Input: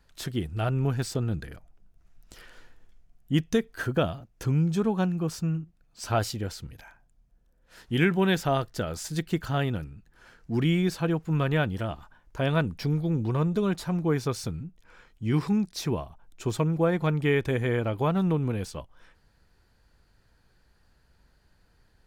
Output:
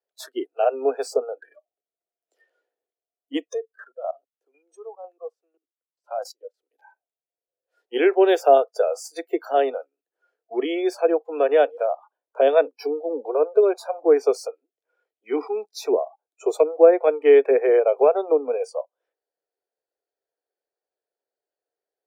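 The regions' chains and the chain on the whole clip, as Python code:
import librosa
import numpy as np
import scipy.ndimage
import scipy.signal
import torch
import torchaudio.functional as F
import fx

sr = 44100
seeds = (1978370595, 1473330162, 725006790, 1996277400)

y = fx.chain(x, sr, fx.highpass(hz=230.0, slope=12),
    fx.level_steps(step_db=18),
    fx.tremolo_shape(shape='saw_down', hz=2.0, depth_pct=70), at=(3.54, 6.71))
y = scipy.signal.sosfilt(scipy.signal.butter(16, 270.0, 'highpass', fs=sr, output='sos'), y)
y = fx.noise_reduce_blind(y, sr, reduce_db=28)
y = fx.band_shelf(y, sr, hz=540.0, db=14.0, octaves=1.2)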